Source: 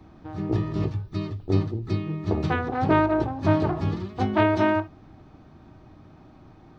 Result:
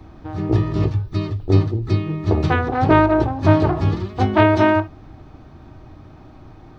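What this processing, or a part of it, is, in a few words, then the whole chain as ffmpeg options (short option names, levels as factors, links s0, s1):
low shelf boost with a cut just above: -af "lowshelf=f=79:g=7,equalizer=f=190:t=o:w=0.62:g=-5,volume=2.11"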